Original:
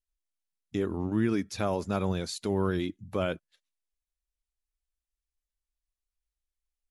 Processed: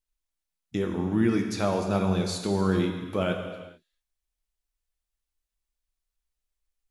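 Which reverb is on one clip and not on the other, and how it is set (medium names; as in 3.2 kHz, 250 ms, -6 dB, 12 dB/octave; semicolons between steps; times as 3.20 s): gated-style reverb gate 470 ms falling, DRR 3 dB; trim +2 dB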